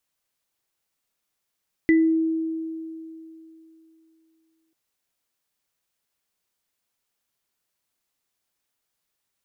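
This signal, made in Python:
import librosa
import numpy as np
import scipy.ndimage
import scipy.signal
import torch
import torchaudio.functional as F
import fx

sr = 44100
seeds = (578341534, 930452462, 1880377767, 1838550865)

y = fx.additive_free(sr, length_s=2.84, hz=323.0, level_db=-13.0, upper_db=(-6.5,), decay_s=3.0, upper_decays_s=(0.29,), upper_hz=(1990.0,))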